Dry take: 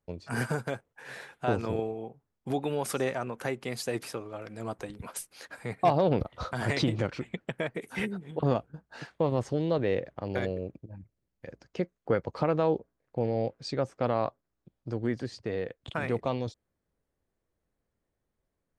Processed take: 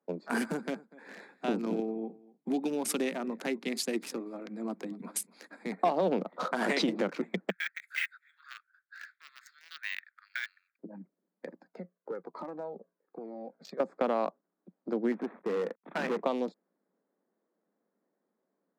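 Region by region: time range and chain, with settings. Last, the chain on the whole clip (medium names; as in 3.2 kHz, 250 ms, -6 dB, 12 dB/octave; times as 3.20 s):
0.38–5.72 s: high-order bell 850 Hz -9 dB 2.3 oct + delay 243 ms -20.5 dB
7.50–10.79 s: steep high-pass 1.4 kHz 72 dB/octave + careless resampling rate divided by 2×, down filtered, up hold
11.48–13.80 s: compression 3:1, threshold -38 dBFS + Shepard-style flanger falling 1.1 Hz
15.12–16.23 s: CVSD coder 16 kbps + hard clipper -30.5 dBFS
whole clip: local Wiener filter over 15 samples; steep high-pass 180 Hz 72 dB/octave; compression 3:1, threshold -32 dBFS; trim +5.5 dB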